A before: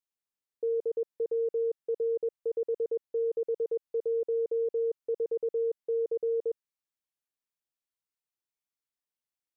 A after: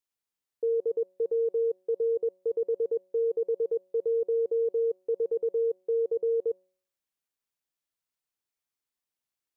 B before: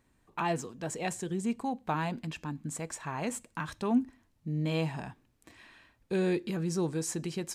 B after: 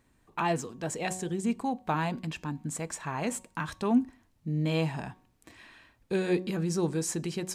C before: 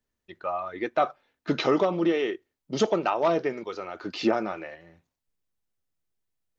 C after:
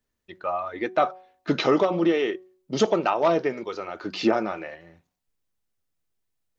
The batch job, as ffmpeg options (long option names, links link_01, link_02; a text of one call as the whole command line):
ffmpeg -i in.wav -af "bandreject=frequency=185.2:width_type=h:width=4,bandreject=frequency=370.4:width_type=h:width=4,bandreject=frequency=555.6:width_type=h:width=4,bandreject=frequency=740.8:width_type=h:width=4,bandreject=frequency=926:width_type=h:width=4,bandreject=frequency=1111.2:width_type=h:width=4,volume=2.5dB" out.wav